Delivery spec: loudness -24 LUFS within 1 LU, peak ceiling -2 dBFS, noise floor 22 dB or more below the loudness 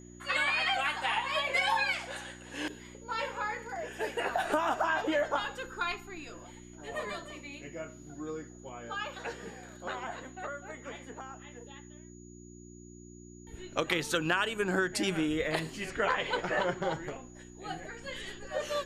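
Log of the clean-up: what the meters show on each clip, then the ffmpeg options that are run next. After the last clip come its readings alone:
hum 60 Hz; highest harmonic 360 Hz; hum level -49 dBFS; steady tone 6.8 kHz; tone level -57 dBFS; loudness -33.0 LUFS; peak level -15.5 dBFS; loudness target -24.0 LUFS
-> -af "bandreject=f=60:t=h:w=4,bandreject=f=120:t=h:w=4,bandreject=f=180:t=h:w=4,bandreject=f=240:t=h:w=4,bandreject=f=300:t=h:w=4,bandreject=f=360:t=h:w=4"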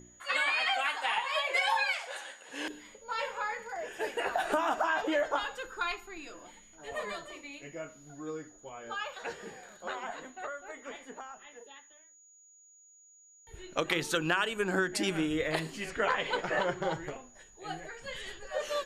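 hum not found; steady tone 6.8 kHz; tone level -57 dBFS
-> -af "bandreject=f=6800:w=30"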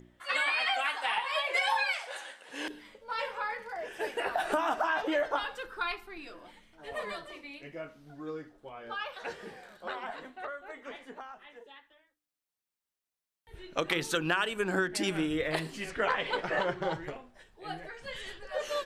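steady tone not found; loudness -32.5 LUFS; peak level -15.5 dBFS; loudness target -24.0 LUFS
-> -af "volume=2.66"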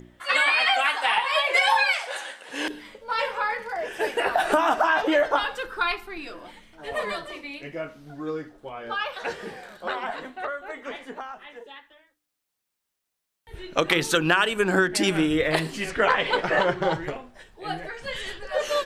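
loudness -24.0 LUFS; peak level -7.0 dBFS; noise floor -82 dBFS

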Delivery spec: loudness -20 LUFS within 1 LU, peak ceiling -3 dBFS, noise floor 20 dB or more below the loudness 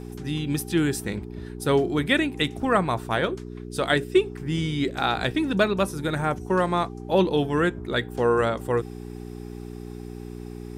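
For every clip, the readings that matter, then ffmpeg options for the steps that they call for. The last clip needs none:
hum 60 Hz; highest harmonic 420 Hz; hum level -35 dBFS; loudness -24.5 LUFS; peak level -6.5 dBFS; loudness target -20.0 LUFS
-> -af "bandreject=f=60:t=h:w=4,bandreject=f=120:t=h:w=4,bandreject=f=180:t=h:w=4,bandreject=f=240:t=h:w=4,bandreject=f=300:t=h:w=4,bandreject=f=360:t=h:w=4,bandreject=f=420:t=h:w=4"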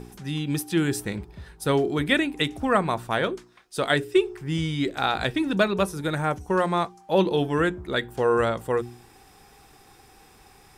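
hum not found; loudness -25.0 LUFS; peak level -6.0 dBFS; loudness target -20.0 LUFS
-> -af "volume=1.78,alimiter=limit=0.708:level=0:latency=1"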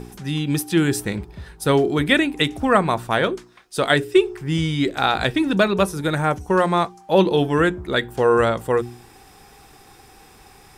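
loudness -20.0 LUFS; peak level -3.0 dBFS; noise floor -49 dBFS

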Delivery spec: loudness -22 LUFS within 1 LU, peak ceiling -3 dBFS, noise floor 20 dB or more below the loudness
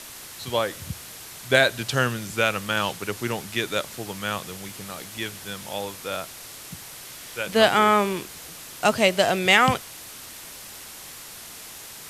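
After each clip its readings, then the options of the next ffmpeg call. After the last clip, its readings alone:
noise floor -41 dBFS; noise floor target -44 dBFS; loudness -23.5 LUFS; peak level -2.0 dBFS; loudness target -22.0 LUFS
-> -af "afftdn=nr=6:nf=-41"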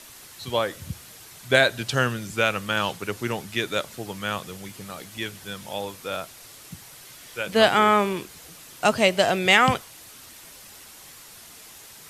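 noise floor -46 dBFS; loudness -23.5 LUFS; peak level -2.5 dBFS; loudness target -22.0 LUFS
-> -af "volume=1.19,alimiter=limit=0.708:level=0:latency=1"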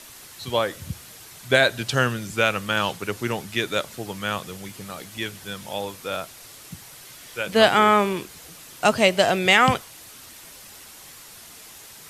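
loudness -22.0 LUFS; peak level -3.0 dBFS; noise floor -45 dBFS

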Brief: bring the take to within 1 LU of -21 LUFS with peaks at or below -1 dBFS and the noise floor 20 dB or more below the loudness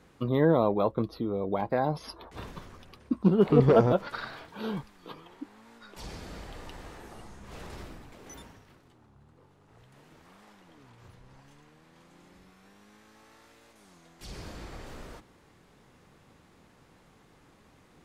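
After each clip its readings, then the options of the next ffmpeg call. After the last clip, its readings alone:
loudness -26.5 LUFS; peak level -7.0 dBFS; loudness target -21.0 LUFS
-> -af "volume=1.88"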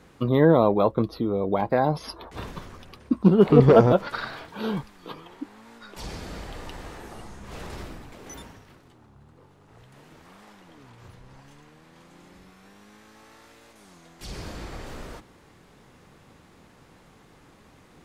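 loudness -21.0 LUFS; peak level -1.5 dBFS; noise floor -55 dBFS

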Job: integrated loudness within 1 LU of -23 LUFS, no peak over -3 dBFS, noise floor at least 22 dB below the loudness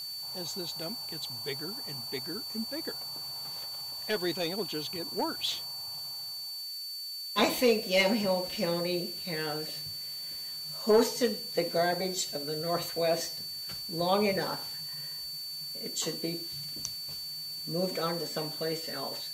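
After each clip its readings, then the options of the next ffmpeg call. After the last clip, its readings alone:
steady tone 4.5 kHz; tone level -37 dBFS; noise floor -40 dBFS; noise floor target -54 dBFS; loudness -32.0 LUFS; peak level -14.5 dBFS; loudness target -23.0 LUFS
-> -af "bandreject=f=4500:w=30"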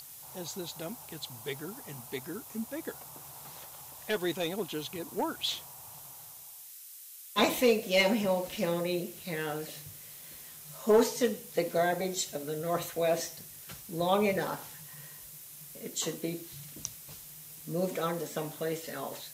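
steady tone not found; noise floor -49 dBFS; noise floor target -54 dBFS
-> -af "afftdn=nr=6:nf=-49"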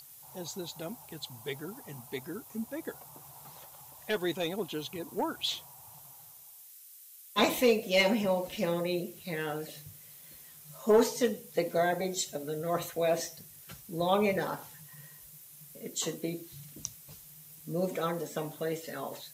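noise floor -53 dBFS; noise floor target -55 dBFS
-> -af "afftdn=nr=6:nf=-53"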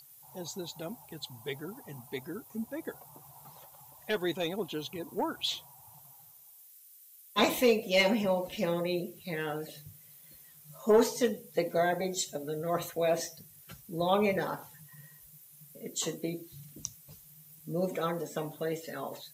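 noise floor -56 dBFS; loudness -32.5 LUFS; peak level -15.0 dBFS; loudness target -23.0 LUFS
-> -af "volume=2.99"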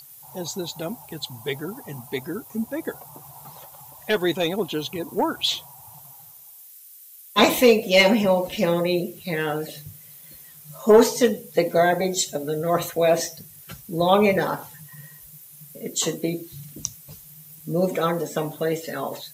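loudness -23.0 LUFS; peak level -5.5 dBFS; noise floor -46 dBFS

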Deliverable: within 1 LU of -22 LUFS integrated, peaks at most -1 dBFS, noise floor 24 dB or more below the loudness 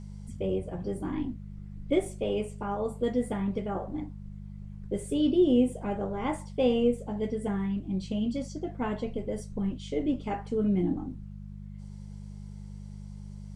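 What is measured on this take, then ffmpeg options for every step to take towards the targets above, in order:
hum 50 Hz; highest harmonic 200 Hz; hum level -39 dBFS; loudness -30.5 LUFS; peak level -13.0 dBFS; loudness target -22.0 LUFS
-> -af "bandreject=f=50:t=h:w=4,bandreject=f=100:t=h:w=4,bandreject=f=150:t=h:w=4,bandreject=f=200:t=h:w=4"
-af "volume=2.66"

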